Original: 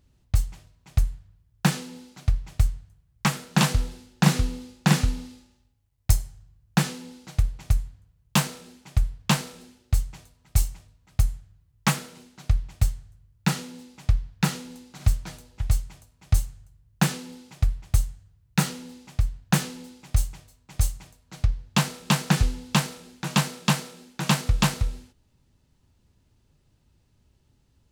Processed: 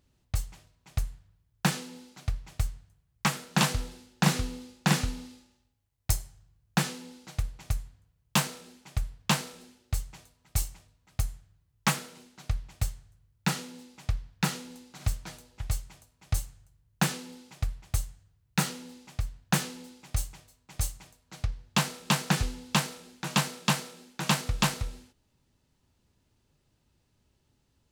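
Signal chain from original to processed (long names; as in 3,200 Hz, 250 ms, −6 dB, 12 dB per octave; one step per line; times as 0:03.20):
low-shelf EQ 170 Hz −7.5 dB
level −2 dB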